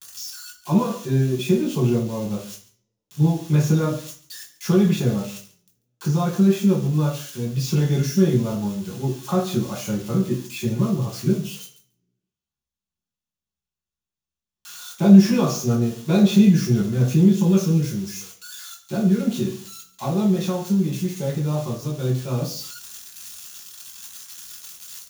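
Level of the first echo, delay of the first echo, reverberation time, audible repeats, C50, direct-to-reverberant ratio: -18.0 dB, 140 ms, 0.45 s, 1, 9.0 dB, -3.0 dB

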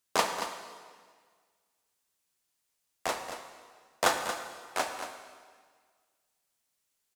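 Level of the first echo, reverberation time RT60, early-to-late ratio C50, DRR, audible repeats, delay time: -10.0 dB, 1.7 s, 5.0 dB, 4.0 dB, 1, 229 ms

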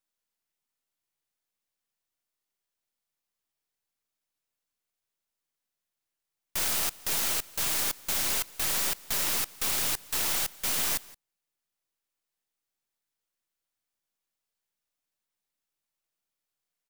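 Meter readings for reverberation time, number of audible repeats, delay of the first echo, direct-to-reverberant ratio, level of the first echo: no reverb, 1, 171 ms, no reverb, -22.0 dB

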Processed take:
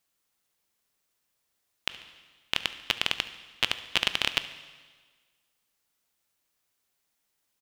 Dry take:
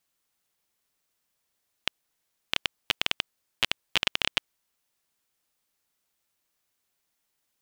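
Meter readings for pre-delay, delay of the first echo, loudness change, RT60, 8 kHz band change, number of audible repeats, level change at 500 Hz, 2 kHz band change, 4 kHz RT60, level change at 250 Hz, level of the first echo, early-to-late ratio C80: 14 ms, 71 ms, +0.5 dB, 1.5 s, +0.5 dB, 1, +0.5 dB, +0.5 dB, 1.5 s, +0.5 dB, -20.5 dB, 14.0 dB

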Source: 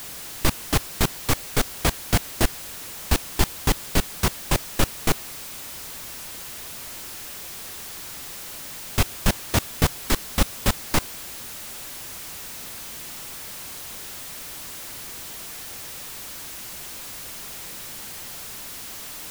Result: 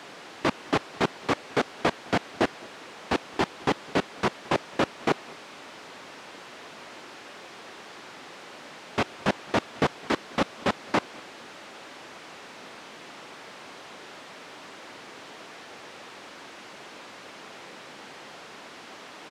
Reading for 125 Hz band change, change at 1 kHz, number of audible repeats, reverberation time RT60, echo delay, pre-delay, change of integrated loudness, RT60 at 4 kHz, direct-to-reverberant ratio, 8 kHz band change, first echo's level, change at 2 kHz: -10.5 dB, +1.5 dB, 1, no reverb, 211 ms, no reverb, -0.5 dB, no reverb, no reverb, -16.5 dB, -24.0 dB, -1.0 dB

